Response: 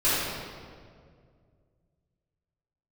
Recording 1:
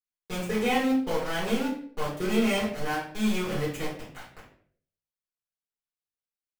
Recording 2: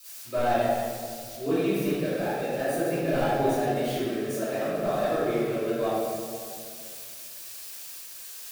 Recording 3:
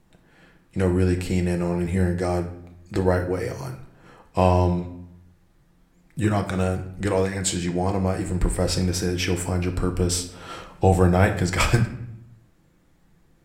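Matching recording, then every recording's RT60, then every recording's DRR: 2; 0.55, 2.1, 0.75 seconds; −9.5, −13.5, 4.0 decibels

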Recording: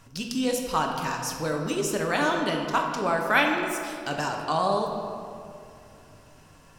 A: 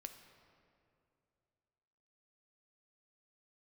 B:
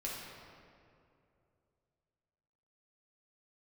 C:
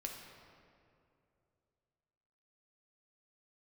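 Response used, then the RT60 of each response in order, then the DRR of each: C; 2.6, 2.6, 2.6 seconds; 6.5, −5.0, 1.0 decibels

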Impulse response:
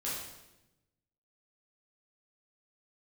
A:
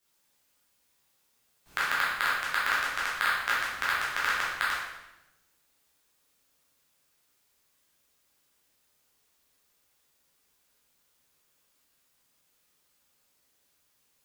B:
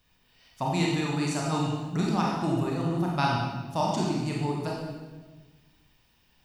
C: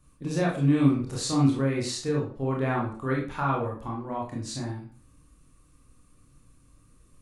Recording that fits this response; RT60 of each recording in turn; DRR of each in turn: A; 0.95, 1.3, 0.40 seconds; −8.0, −3.5, −3.5 decibels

